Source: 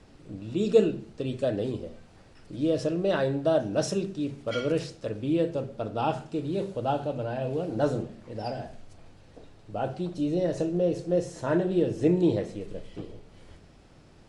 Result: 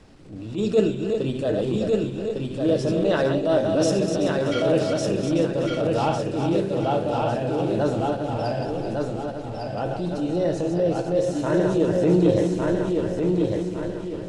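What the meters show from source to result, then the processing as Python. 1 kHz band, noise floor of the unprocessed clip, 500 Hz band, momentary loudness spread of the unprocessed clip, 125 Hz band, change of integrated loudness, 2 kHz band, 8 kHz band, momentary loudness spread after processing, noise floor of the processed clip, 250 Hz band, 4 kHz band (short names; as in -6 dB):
+6.5 dB, -54 dBFS, +6.0 dB, 14 LU, +6.5 dB, +5.0 dB, +6.5 dB, +7.0 dB, 8 LU, -33 dBFS, +6.0 dB, +6.5 dB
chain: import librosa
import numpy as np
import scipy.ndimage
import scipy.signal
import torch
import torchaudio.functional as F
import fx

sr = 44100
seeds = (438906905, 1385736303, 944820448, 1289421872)

y = fx.reverse_delay_fb(x, sr, ms=190, feedback_pct=58, wet_db=-6.0)
y = fx.echo_feedback(y, sr, ms=1154, feedback_pct=35, wet_db=-3.5)
y = fx.transient(y, sr, attack_db=-8, sustain_db=-2)
y = y * librosa.db_to_amplitude(4.5)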